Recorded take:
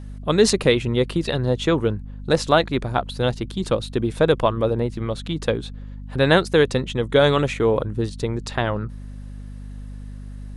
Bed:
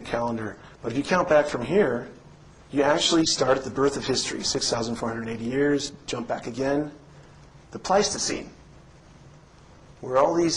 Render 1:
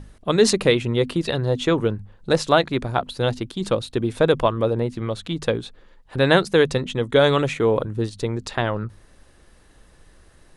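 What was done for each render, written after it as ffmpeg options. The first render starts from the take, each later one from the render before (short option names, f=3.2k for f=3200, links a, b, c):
-af "bandreject=f=50:t=h:w=6,bandreject=f=100:t=h:w=6,bandreject=f=150:t=h:w=6,bandreject=f=200:t=h:w=6,bandreject=f=250:t=h:w=6"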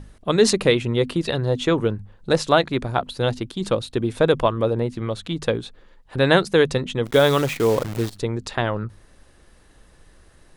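-filter_complex "[0:a]asplit=3[a][b][c];[a]afade=t=out:st=7.05:d=0.02[d];[b]acrusher=bits=6:dc=4:mix=0:aa=0.000001,afade=t=in:st=7.05:d=0.02,afade=t=out:st=8.17:d=0.02[e];[c]afade=t=in:st=8.17:d=0.02[f];[d][e][f]amix=inputs=3:normalize=0"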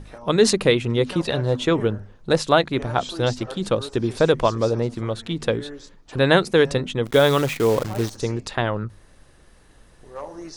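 -filter_complex "[1:a]volume=-15dB[a];[0:a][a]amix=inputs=2:normalize=0"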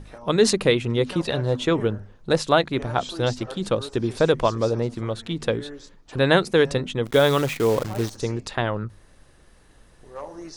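-af "volume=-1.5dB"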